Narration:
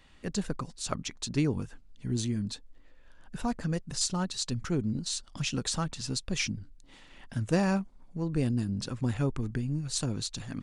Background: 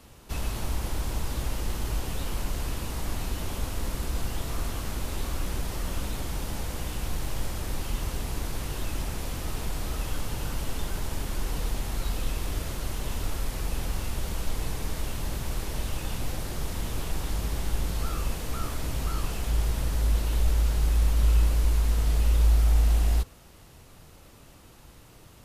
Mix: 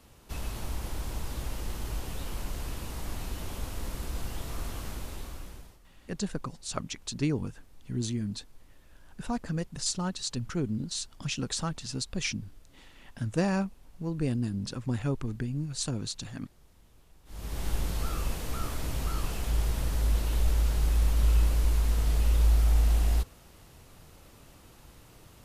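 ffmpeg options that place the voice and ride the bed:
ffmpeg -i stem1.wav -i stem2.wav -filter_complex "[0:a]adelay=5850,volume=-1dB[link_01];[1:a]volume=21.5dB,afade=type=out:start_time=4.86:duration=0.93:silence=0.0668344,afade=type=in:start_time=17.25:duration=0.43:silence=0.0473151[link_02];[link_01][link_02]amix=inputs=2:normalize=0" out.wav

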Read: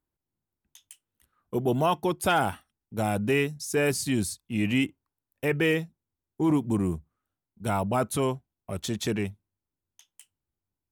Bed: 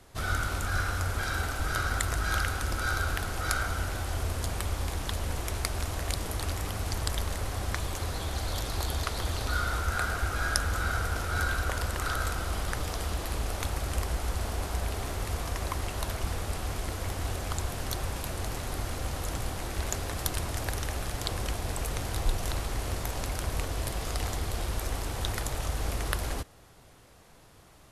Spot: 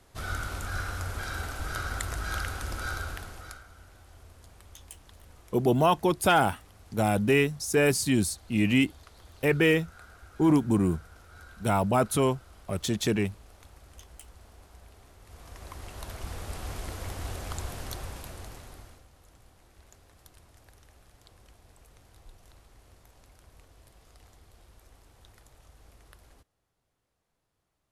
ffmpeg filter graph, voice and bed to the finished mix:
ffmpeg -i stem1.wav -i stem2.wav -filter_complex "[0:a]adelay=4000,volume=2dB[link_01];[1:a]volume=13.5dB,afade=type=out:start_time=2.87:duration=0.75:silence=0.141254,afade=type=in:start_time=15.22:duration=1.48:silence=0.133352,afade=type=out:start_time=17.72:duration=1.34:silence=0.0891251[link_02];[link_01][link_02]amix=inputs=2:normalize=0" out.wav

